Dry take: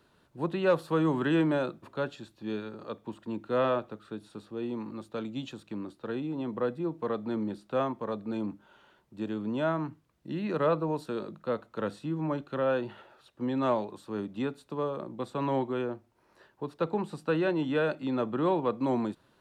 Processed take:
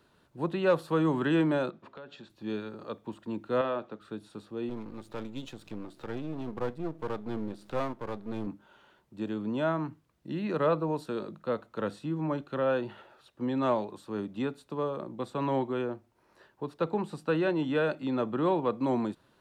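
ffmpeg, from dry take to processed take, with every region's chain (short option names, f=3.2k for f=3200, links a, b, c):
-filter_complex "[0:a]asettb=1/sr,asplit=3[a][b][c];[a]atrim=end=1.704[d];[b]atrim=start=1.7:end=2.3,asetpts=PTS-STARTPTS,afade=t=in:d=0.004:c=qsin,afade=t=out:st=0.596:d=0.004:c=qsin,highpass=160,lowpass=4.4k,bandreject=f=310:w=5.7,acompressor=threshold=-42dB:ratio=8:attack=3.2:release=140:knee=1:detection=peak[e];[c]atrim=start=2.296[f];[d][e]acrossfade=d=0.004:c1=hsin:c2=qsin[g];[g][f]acrossfade=d=0.004:c1=qsin:c2=hsin,asettb=1/sr,asplit=3[h][i][j];[h]atrim=end=3.614[k];[i]atrim=start=3.61:end=4.01,asetpts=PTS-STARTPTS,afade=t=in:d=0.004:c=qsin,afade=t=out:st=0.396:d=0.004:c=qsin,highpass=160,lowpass=5.6k,acompressor=threshold=-29dB:ratio=2.5:attack=3.2:release=140:knee=1:detection=peak[l];[j]atrim=start=4.006[m];[k][l]acrossfade=d=0.004:c1=hsin:c2=qsin[n];[n][m]acrossfade=d=0.004:c1=qsin:c2=hsin,asettb=1/sr,asplit=3[o][p][q];[o]atrim=end=4.694[r];[p]atrim=start=4.69:end=8.47,asetpts=PTS-STARTPTS,afade=t=in:d=0.004:c=qsin,afade=t=out:st=3.776:d=0.004:c=qsin,aeval=exprs='if(lt(val(0),0),0.251*val(0),val(0))':c=same,acompressor=mode=upward:threshold=-38dB:ratio=2.5:attack=3.2:release=140:knee=2.83:detection=peak[s];[q]atrim=start=8.466[t];[r][s]acrossfade=d=0.004:c1=hsin:c2=qsin[u];[u][t]acrossfade=d=0.004:c1=qsin:c2=hsin"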